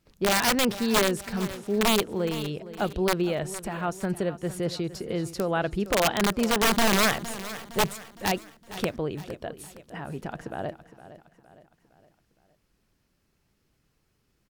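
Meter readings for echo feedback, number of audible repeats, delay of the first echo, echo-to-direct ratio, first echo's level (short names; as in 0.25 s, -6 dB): 47%, 4, 0.462 s, -14.0 dB, -15.0 dB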